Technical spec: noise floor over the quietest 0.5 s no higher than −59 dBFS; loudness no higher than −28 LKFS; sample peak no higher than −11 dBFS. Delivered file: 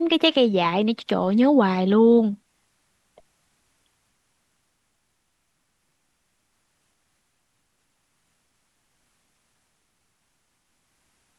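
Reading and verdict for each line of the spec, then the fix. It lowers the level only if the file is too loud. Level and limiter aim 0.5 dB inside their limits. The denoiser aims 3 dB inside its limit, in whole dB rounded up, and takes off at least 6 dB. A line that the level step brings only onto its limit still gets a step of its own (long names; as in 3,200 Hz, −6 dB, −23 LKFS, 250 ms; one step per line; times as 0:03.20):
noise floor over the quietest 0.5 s −72 dBFS: in spec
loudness −19.5 LKFS: out of spec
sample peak −4.5 dBFS: out of spec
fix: level −9 dB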